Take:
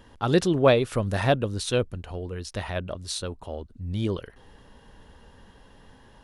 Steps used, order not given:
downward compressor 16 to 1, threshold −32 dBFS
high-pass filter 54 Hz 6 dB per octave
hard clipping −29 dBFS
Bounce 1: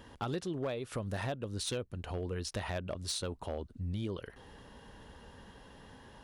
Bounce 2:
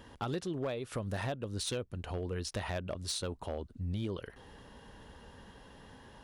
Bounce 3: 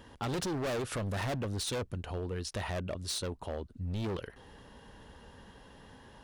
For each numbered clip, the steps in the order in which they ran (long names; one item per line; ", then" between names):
downward compressor, then high-pass filter, then hard clipping
high-pass filter, then downward compressor, then hard clipping
high-pass filter, then hard clipping, then downward compressor